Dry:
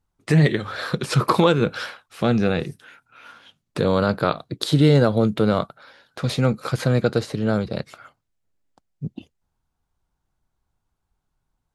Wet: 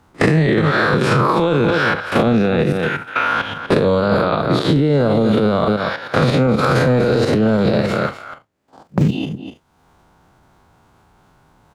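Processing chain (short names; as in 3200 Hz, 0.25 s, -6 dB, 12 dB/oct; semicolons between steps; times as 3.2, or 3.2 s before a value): time blur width 96 ms; high shelf 7200 Hz -4 dB; gate with hold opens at -43 dBFS; HPF 230 Hz 6 dB/oct; 6.62–9.08 sample leveller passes 1; high shelf 2800 Hz -10 dB; level quantiser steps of 11 dB; echo 0.247 s -17 dB; maximiser +32.5 dB; three-band squash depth 100%; gain -6 dB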